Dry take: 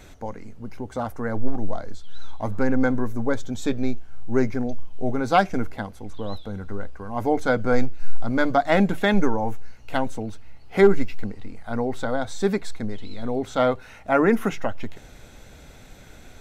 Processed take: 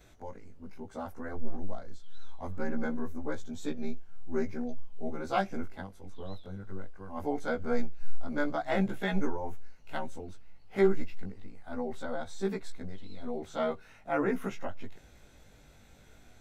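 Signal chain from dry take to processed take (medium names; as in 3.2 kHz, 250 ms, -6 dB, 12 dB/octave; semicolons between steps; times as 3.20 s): short-time spectra conjugated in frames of 41 ms; trim -8 dB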